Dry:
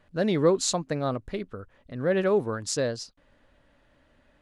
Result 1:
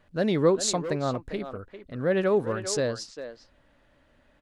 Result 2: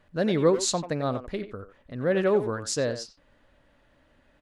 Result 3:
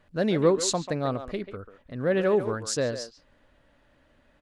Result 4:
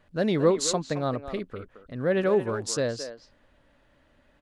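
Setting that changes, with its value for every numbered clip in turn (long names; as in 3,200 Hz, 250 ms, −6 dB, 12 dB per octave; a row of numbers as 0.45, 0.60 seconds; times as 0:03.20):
far-end echo of a speakerphone, delay time: 400, 90, 140, 220 milliseconds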